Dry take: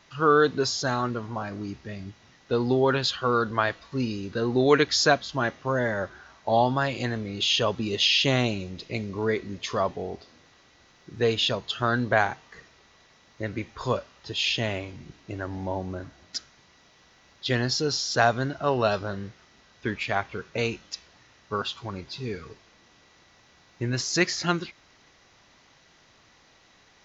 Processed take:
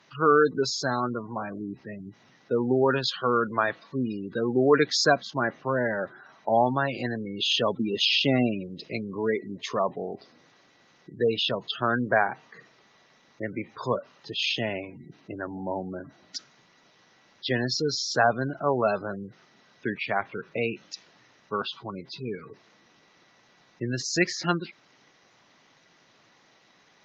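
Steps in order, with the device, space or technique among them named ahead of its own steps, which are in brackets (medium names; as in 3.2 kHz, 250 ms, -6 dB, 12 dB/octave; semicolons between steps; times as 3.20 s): 7.54–8.71 s: dynamic bell 250 Hz, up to +5 dB, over -39 dBFS, Q 3.6; noise-suppressed video call (high-pass 130 Hz 24 dB/octave; spectral gate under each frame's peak -20 dB strong; Opus 24 kbps 48 kHz)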